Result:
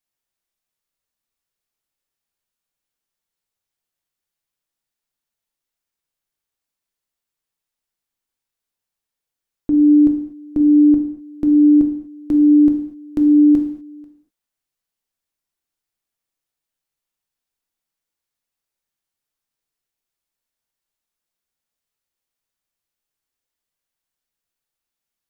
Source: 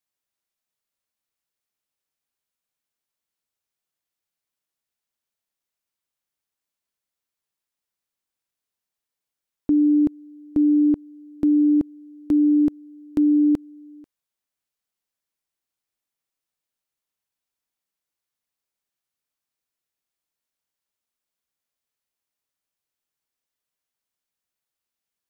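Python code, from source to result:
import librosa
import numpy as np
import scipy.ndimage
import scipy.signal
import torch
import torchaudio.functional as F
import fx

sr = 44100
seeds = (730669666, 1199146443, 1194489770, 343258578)

y = fx.low_shelf(x, sr, hz=86.0, db=8.0)
y = fx.rev_gated(y, sr, seeds[0], gate_ms=270, shape='falling', drr_db=3.5)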